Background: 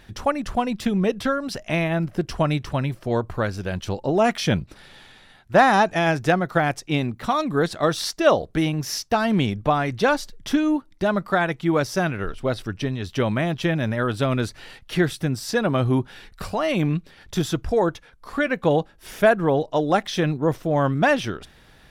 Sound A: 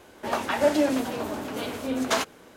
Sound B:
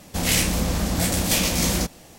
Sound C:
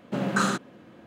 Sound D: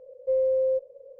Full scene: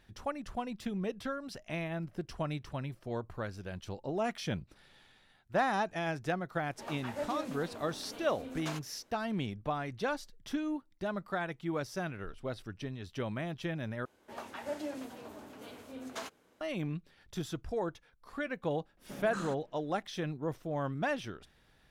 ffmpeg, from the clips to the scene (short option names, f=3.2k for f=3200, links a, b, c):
-filter_complex "[1:a]asplit=2[a][b];[0:a]volume=-14.5dB,asplit=2[c][d];[c]atrim=end=14.054[e];[b]atrim=end=2.56,asetpts=PTS-STARTPTS,volume=-17dB[f];[d]atrim=start=16.606[g];[a]atrim=end=2.56,asetpts=PTS-STARTPTS,volume=-16.5dB,afade=t=in:d=0.004:c=hsin,afade=t=out:st=2.556:d=0.004:c=hsin,adelay=6550[h];[3:a]atrim=end=1.06,asetpts=PTS-STARTPTS,volume=-17dB,afade=t=in:d=0.004:c=hsin,afade=t=out:st=1.056:d=0.004:c=hsin,adelay=18970[i];[e][f]acrossfade=d=0.004:c1=hsin:c2=hsin[j];[j][g]acrossfade=d=0.004:c1=hsin:c2=hsin[k];[k][h][i]amix=inputs=3:normalize=0"